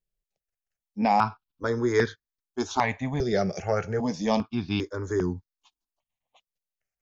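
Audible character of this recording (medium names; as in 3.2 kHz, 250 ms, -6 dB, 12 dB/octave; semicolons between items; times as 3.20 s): notches that jump at a steady rate 2.5 Hz 270–2700 Hz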